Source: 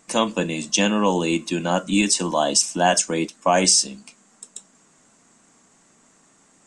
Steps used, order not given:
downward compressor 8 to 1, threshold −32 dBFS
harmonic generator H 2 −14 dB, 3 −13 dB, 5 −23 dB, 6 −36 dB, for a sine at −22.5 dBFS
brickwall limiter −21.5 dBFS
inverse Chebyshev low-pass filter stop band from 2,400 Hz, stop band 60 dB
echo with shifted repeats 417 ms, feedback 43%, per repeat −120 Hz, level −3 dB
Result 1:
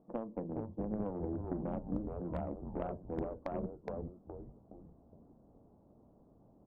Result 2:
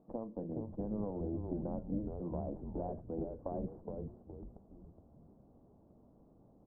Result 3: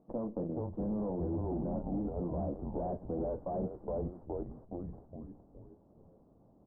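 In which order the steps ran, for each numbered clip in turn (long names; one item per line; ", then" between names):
downward compressor, then echo with shifted repeats, then inverse Chebyshev low-pass filter, then harmonic generator, then brickwall limiter
downward compressor, then harmonic generator, then brickwall limiter, then inverse Chebyshev low-pass filter, then echo with shifted repeats
echo with shifted repeats, then harmonic generator, then downward compressor, then inverse Chebyshev low-pass filter, then brickwall limiter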